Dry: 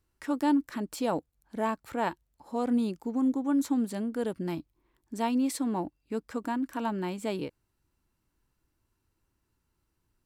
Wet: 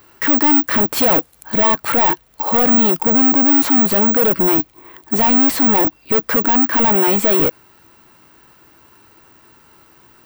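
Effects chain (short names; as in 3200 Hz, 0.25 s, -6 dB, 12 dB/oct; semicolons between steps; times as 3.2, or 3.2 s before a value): overdrive pedal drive 36 dB, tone 2000 Hz, clips at -15.5 dBFS; 0.96–1.71 high shelf 6600 Hz -> 12000 Hz +11 dB; careless resampling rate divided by 2×, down none, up zero stuff; gain +6 dB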